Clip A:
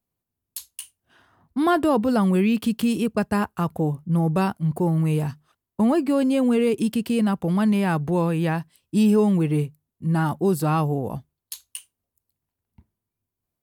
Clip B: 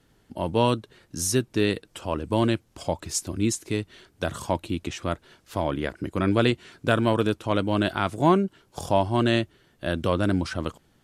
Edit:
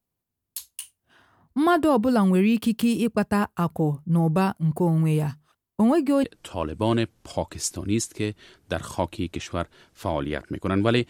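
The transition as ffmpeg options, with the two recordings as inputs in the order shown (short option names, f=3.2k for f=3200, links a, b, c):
-filter_complex "[0:a]apad=whole_dur=11.09,atrim=end=11.09,atrim=end=6.242[a];[1:a]atrim=start=1.748:end=6.6[b];[a][b]acrossfade=d=0.004:c1=hsin:c2=hsin"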